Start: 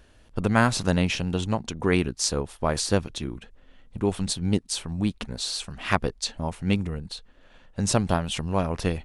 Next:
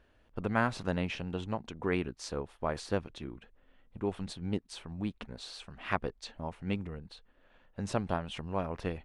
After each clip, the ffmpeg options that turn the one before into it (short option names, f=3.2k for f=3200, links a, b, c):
-af "bass=f=250:g=-4,treble=f=4k:g=-14,volume=-7.5dB"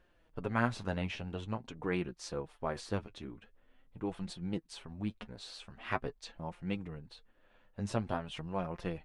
-af "flanger=delay=5.6:depth=4.4:regen=34:speed=0.46:shape=sinusoidal,volume=1dB"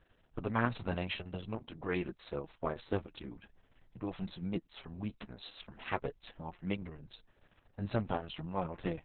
-af "volume=1.5dB" -ar 48000 -c:a libopus -b:a 6k